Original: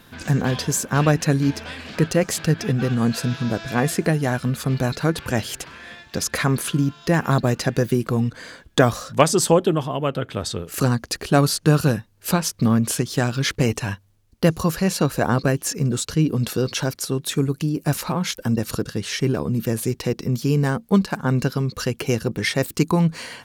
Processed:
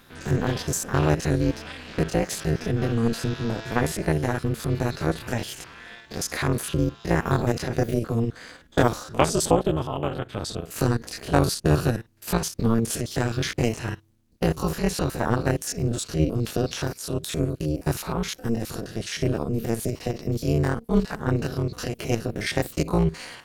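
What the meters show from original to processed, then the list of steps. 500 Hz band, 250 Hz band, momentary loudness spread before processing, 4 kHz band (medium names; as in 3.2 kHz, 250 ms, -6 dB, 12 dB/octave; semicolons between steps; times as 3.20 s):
-3.0 dB, -4.5 dB, 7 LU, -5.0 dB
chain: spectrogram pixelated in time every 50 ms; AM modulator 230 Hz, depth 90%; trim +1.5 dB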